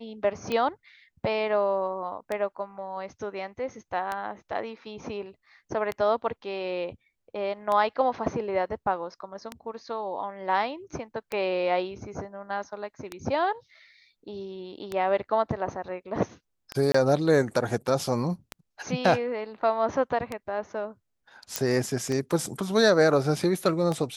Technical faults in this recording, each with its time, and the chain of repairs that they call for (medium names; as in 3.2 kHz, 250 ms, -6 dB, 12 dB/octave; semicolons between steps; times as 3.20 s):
tick 33 1/3 rpm -16 dBFS
16.92–16.94 s: dropout 24 ms
21.56 s: pop -8 dBFS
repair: de-click; interpolate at 16.92 s, 24 ms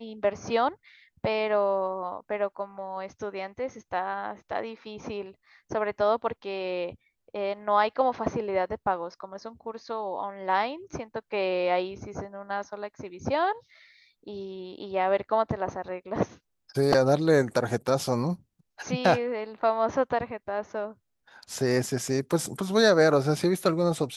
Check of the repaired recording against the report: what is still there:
nothing left